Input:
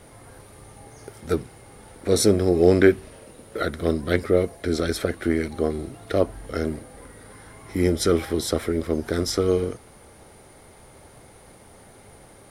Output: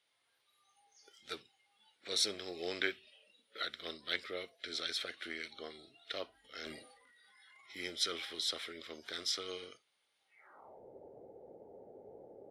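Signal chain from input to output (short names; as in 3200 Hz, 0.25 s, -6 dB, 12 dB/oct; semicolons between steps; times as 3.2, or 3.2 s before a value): band-pass sweep 3400 Hz -> 460 Hz, 10.25–10.83; spectral noise reduction 16 dB; 6.44–7.7 transient shaper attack -5 dB, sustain +10 dB; gain +1 dB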